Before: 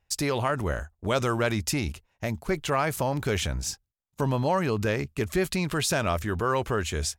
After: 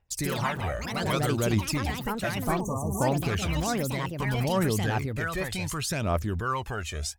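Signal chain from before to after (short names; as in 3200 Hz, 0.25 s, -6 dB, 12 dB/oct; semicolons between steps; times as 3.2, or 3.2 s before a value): phaser 0.65 Hz, delay 1.7 ms, feedback 63%; echoes that change speed 88 ms, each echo +4 st, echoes 3; spectral delete 2.61–3.01, 1200–5700 Hz; gain -6 dB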